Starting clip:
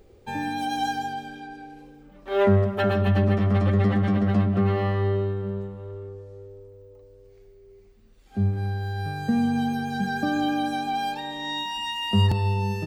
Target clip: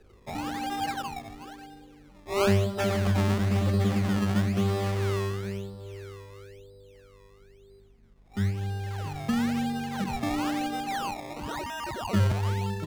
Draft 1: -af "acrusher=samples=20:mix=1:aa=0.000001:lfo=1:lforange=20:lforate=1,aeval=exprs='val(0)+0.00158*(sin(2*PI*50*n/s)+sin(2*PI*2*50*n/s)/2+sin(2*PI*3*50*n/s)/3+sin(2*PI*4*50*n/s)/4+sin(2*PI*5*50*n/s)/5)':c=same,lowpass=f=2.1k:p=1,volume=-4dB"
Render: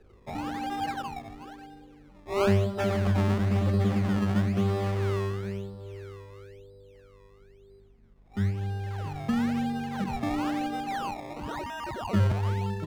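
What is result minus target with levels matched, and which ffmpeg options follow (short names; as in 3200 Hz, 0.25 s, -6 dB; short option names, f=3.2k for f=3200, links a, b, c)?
8000 Hz band -6.5 dB
-af "acrusher=samples=20:mix=1:aa=0.000001:lfo=1:lforange=20:lforate=1,aeval=exprs='val(0)+0.00158*(sin(2*PI*50*n/s)+sin(2*PI*2*50*n/s)/2+sin(2*PI*3*50*n/s)/3+sin(2*PI*4*50*n/s)/4+sin(2*PI*5*50*n/s)/5)':c=same,lowpass=f=5.7k:p=1,volume=-4dB"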